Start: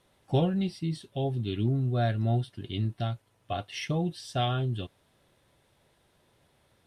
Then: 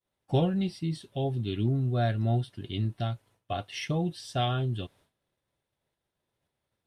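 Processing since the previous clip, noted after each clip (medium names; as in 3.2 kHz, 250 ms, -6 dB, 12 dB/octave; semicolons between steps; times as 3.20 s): expander -55 dBFS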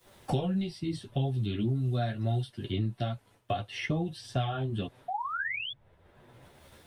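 painted sound rise, 5.08–5.72 s, 700–3500 Hz -40 dBFS; chorus voices 4, 0.73 Hz, delay 12 ms, depth 3.9 ms; three bands compressed up and down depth 100%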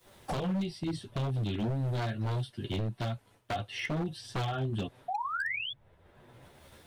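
wavefolder -26.5 dBFS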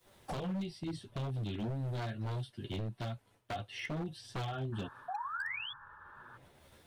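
painted sound noise, 4.72–6.38 s, 820–1800 Hz -49 dBFS; trim -5.5 dB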